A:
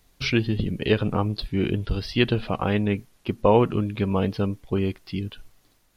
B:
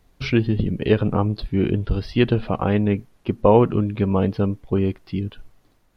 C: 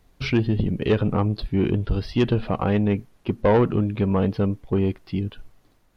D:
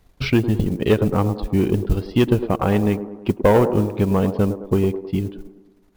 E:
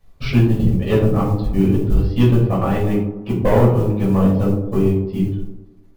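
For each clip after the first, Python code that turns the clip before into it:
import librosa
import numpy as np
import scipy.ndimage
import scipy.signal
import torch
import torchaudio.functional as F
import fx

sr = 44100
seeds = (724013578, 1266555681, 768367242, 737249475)

y1 = fx.high_shelf(x, sr, hz=2300.0, db=-11.5)
y1 = y1 * librosa.db_to_amplitude(4.0)
y2 = 10.0 ** (-11.0 / 20.0) * np.tanh(y1 / 10.0 ** (-11.0 / 20.0))
y3 = fx.mod_noise(y2, sr, seeds[0], snr_db=28)
y3 = fx.transient(y3, sr, attack_db=3, sustain_db=-9)
y3 = fx.echo_wet_bandpass(y3, sr, ms=106, feedback_pct=54, hz=510.0, wet_db=-8.0)
y3 = y3 * librosa.db_to_amplitude(2.0)
y4 = fx.room_shoebox(y3, sr, seeds[1], volume_m3=410.0, walls='furnished', distance_m=5.9)
y4 = y4 * librosa.db_to_amplitude(-9.5)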